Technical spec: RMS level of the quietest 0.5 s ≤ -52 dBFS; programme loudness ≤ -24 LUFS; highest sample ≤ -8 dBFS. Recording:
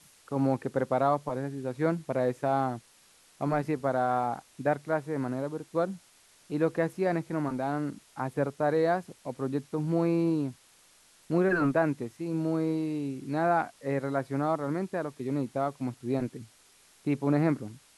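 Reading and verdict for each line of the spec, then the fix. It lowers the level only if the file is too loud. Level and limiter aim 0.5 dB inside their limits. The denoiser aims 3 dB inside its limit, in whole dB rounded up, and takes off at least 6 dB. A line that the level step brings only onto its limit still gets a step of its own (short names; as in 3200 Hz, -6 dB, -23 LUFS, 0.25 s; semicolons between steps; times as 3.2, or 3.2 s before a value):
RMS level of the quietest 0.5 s -60 dBFS: OK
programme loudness -30.0 LUFS: OK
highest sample -13.0 dBFS: OK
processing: none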